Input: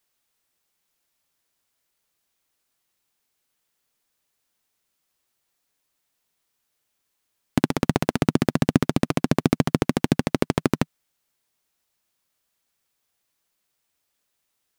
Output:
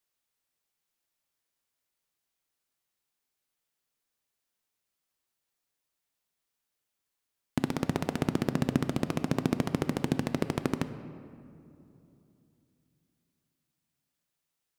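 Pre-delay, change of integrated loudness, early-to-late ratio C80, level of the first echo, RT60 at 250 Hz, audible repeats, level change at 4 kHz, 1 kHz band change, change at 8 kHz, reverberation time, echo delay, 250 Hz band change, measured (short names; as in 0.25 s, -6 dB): 6 ms, -8.0 dB, 12.5 dB, none, 3.7 s, none, -8.5 dB, -8.0 dB, -8.5 dB, 2.9 s, none, -8.0 dB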